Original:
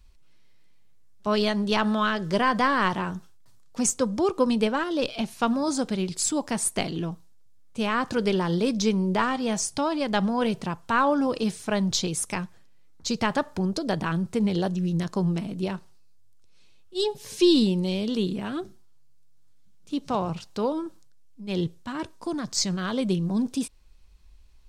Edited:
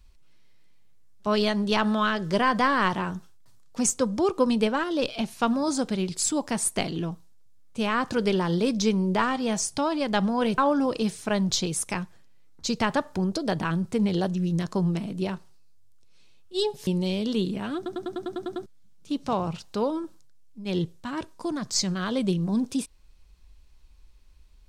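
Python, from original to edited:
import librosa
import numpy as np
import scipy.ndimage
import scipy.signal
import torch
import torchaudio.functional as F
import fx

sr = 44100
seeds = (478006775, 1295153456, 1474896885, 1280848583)

y = fx.edit(x, sr, fx.cut(start_s=10.58, length_s=0.41),
    fx.cut(start_s=17.28, length_s=0.41),
    fx.stutter_over(start_s=18.58, slice_s=0.1, count=9), tone=tone)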